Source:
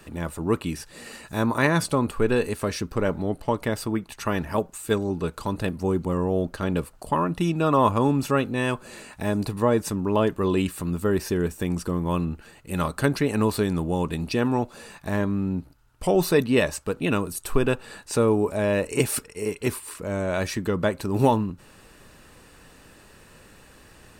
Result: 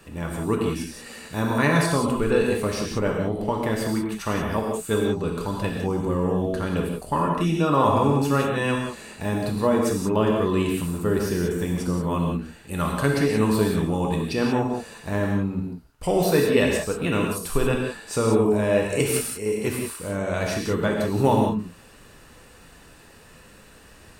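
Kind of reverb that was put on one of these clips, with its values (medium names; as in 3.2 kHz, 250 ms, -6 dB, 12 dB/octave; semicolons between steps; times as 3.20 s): gated-style reverb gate 210 ms flat, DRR -1 dB; trim -2 dB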